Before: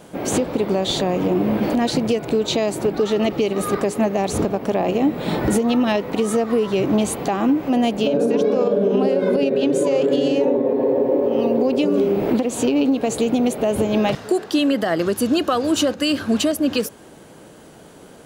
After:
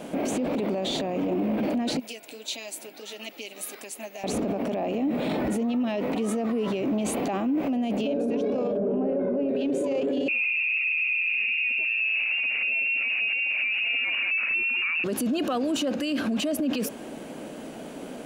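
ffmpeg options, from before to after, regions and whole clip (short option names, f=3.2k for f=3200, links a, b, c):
-filter_complex "[0:a]asettb=1/sr,asplit=3[a][b][c];[a]atrim=end=1.994[d];[b]atrim=start=1.99:end=4.24,asetpts=PTS-STARTPTS,afade=t=in:d=0.004:c=qsin,afade=t=out:st=2.246:d=0.004:c=qsin,aderivative,bandreject=f=1.2k:w=9.5,flanger=delay=0.7:depth=6:regen=-50:speed=1.6:shape=sinusoidal[e];[c]atrim=start=4.236[f];[d][e]acrossfade=d=0.004:c1=hsin:c2=qsin[g];[g][f]acrossfade=d=0.004:c1=qsin:c2=hsin,asettb=1/sr,asplit=3[h][i][j];[h]atrim=end=8.774[k];[i]atrim=start=8.77:end=9.49,asetpts=PTS-STARTPTS,afade=t=in:d=0.004:c=qsin,afade=t=out:st=0.716:d=0.004:c=qsin,lowpass=1.3k,acontrast=39[l];[j]atrim=start=9.486[m];[k][l]acrossfade=d=0.004:c1=hsin:c2=qsin[n];[n][m]acrossfade=d=0.004:c1=qsin:c2=hsin,asettb=1/sr,asplit=3[o][p][q];[o]atrim=end=10.284[r];[p]atrim=start=10.28:end=15.04,asetpts=PTS-STARTPTS,afade=t=in:d=0.004:c=qsin,afade=t=out:st=4.756:d=0.004:c=qsin,equalizer=f=770:w=0.36:g=9,aecho=1:1:181:0.2,atrim=end_sample=209916,lowpass=f=2.6k:t=q:w=0.5098,lowpass=f=2.6k:t=q:w=0.6013,lowpass=f=2.6k:t=q:w=0.9,lowpass=f=2.6k:t=q:w=2.563,afreqshift=-3000[s];[q]atrim=start=15.036[t];[r][s]acrossfade=d=0.004:c1=hsin:c2=qsin[u];[u][t]acrossfade=d=0.004:c1=qsin:c2=hsin,equalizer=f=100:t=o:w=0.67:g=-10,equalizer=f=250:t=o:w=0.67:g=11,equalizer=f=630:t=o:w=0.67:g=7,equalizer=f=2.5k:t=o:w=0.67:g=7,alimiter=limit=-20dB:level=0:latency=1:release=37"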